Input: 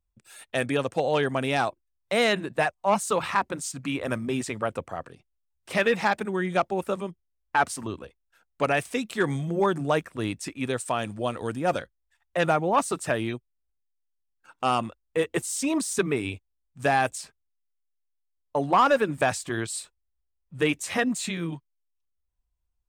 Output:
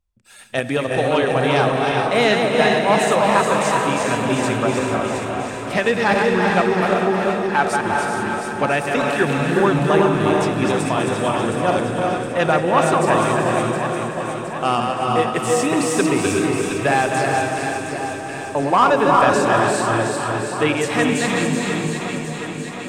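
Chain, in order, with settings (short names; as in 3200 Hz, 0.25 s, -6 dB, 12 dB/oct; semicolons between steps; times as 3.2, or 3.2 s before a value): regenerating reverse delay 0.192 s, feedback 54%, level -4.5 dB; high shelf 11000 Hz -9 dB; echo with dull and thin repeats by turns 0.358 s, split 1300 Hz, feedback 78%, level -5.5 dB; non-linear reverb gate 0.49 s rising, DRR 3 dB; ending taper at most 210 dB/s; gain +4.5 dB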